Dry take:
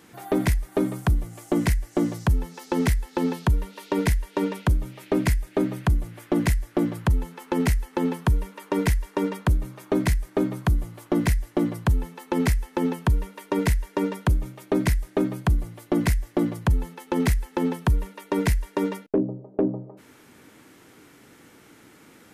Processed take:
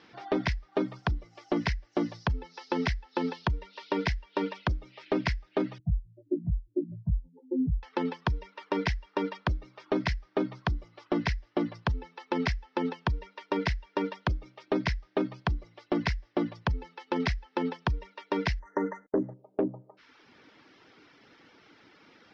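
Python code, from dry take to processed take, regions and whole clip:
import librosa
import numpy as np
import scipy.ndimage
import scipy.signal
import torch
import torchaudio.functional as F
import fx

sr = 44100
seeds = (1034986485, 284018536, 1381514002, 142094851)

y = fx.chain(x, sr, fx.spec_expand(power=3.2),
    fx.cheby2_lowpass(hz=1100.0, order=4, stop_db=40),
    fx.doubler(ms=19.0, db=-3), at=(5.78, 7.83))
y = fx.chain(y, sr, fx.law_mismatch(coded='mu'),
    fx.brickwall_bandstop(low_hz=2100.0, high_hz=5800.0), at=(18.59, 19.34))
y = fx.dereverb_blind(y, sr, rt60_s=0.72)
y = scipy.signal.sosfilt(scipy.signal.cheby1(5, 1.0, 5400.0, 'lowpass', fs=sr, output='sos'), y)
y = fx.low_shelf(y, sr, hz=380.0, db=-9.5)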